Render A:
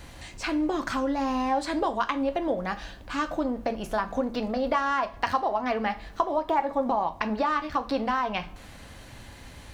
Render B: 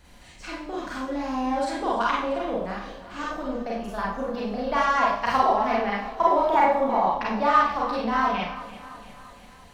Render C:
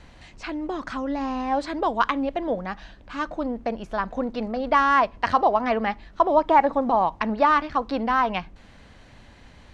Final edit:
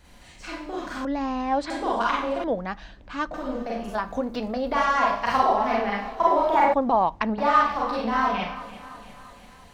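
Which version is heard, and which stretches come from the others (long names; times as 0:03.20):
B
0:01.05–0:01.70: punch in from C
0:02.44–0:03.34: punch in from C
0:03.95–0:04.72: punch in from A
0:06.74–0:07.38: punch in from C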